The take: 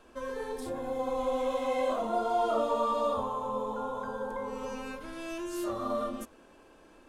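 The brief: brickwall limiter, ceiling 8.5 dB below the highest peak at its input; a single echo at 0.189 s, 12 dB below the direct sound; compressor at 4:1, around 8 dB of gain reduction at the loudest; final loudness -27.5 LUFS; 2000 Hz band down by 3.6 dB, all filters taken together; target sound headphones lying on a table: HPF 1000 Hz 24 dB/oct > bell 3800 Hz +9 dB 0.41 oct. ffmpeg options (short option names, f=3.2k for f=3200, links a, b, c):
-af "equalizer=f=2k:t=o:g=-5.5,acompressor=threshold=-35dB:ratio=4,alimiter=level_in=9.5dB:limit=-24dB:level=0:latency=1,volume=-9.5dB,highpass=f=1k:w=0.5412,highpass=f=1k:w=1.3066,equalizer=f=3.8k:t=o:w=0.41:g=9,aecho=1:1:189:0.251,volume=21dB"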